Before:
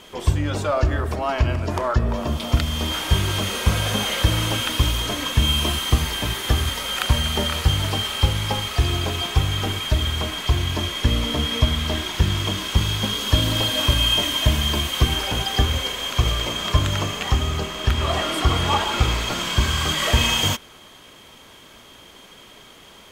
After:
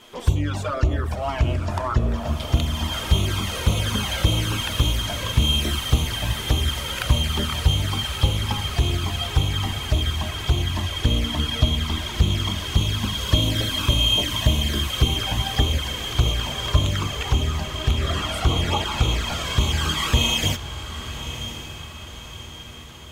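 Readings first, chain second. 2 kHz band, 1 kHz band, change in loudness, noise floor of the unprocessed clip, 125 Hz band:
-3.0 dB, -3.5 dB, -1.5 dB, -46 dBFS, 0.0 dB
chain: touch-sensitive flanger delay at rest 9.6 ms, full sweep at -15.5 dBFS; echo that smears into a reverb 1087 ms, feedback 50%, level -11 dB

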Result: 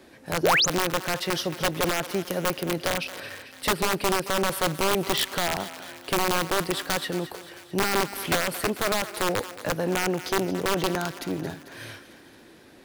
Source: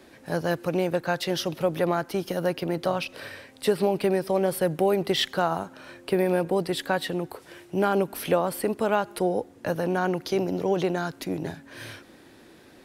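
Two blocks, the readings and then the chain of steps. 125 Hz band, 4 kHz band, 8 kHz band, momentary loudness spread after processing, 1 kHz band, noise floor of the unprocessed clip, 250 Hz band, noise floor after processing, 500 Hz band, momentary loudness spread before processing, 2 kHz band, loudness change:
-1.5 dB, +5.5 dB, +10.0 dB, 10 LU, +1.5 dB, -52 dBFS, -2.0 dB, -51 dBFS, -3.0 dB, 11 LU, +5.5 dB, +0.5 dB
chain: integer overflow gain 16.5 dB; thinning echo 222 ms, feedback 60%, high-pass 610 Hz, level -12.5 dB; painted sound rise, 0.43–0.66 s, 300–7500 Hz -20 dBFS

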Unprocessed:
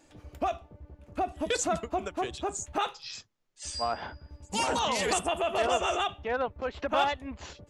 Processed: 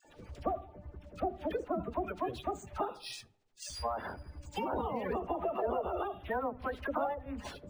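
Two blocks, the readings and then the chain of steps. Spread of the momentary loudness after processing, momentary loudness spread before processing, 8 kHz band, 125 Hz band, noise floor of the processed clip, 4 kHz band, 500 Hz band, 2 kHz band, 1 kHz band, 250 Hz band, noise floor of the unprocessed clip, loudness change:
10 LU, 14 LU, -16.0 dB, -1.5 dB, -62 dBFS, -14.0 dB, -4.5 dB, -10.0 dB, -6.5 dB, -2.5 dB, -62 dBFS, -6.5 dB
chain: coarse spectral quantiser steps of 30 dB; low-pass that closes with the level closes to 740 Hz, closed at -25 dBFS; hum notches 50/100/150/200/250/300 Hz; in parallel at 0 dB: compression, threshold -40 dBFS, peak gain reduction 13.5 dB; on the sum: phase dispersion lows, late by 49 ms, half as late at 1.1 kHz; on a send: filtered feedback delay 76 ms, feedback 64%, low-pass 1.7 kHz, level -22 dB; on the sum: decimation joined by straight lines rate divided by 3×; trim -4.5 dB

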